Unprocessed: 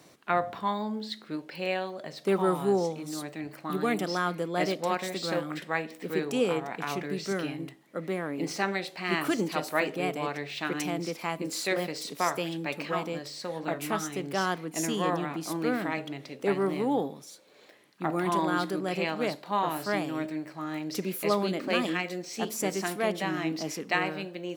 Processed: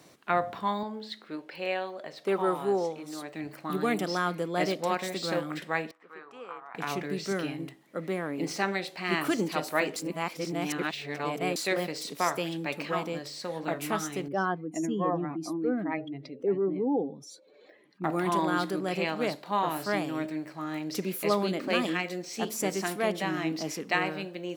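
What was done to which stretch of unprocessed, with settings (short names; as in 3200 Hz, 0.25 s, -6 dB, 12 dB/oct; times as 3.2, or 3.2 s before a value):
0.83–3.35 tone controls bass -10 dB, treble -6 dB
5.91–6.75 band-pass 1200 Hz, Q 3.9
9.96–11.56 reverse
14.28–18.04 spectral contrast raised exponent 1.9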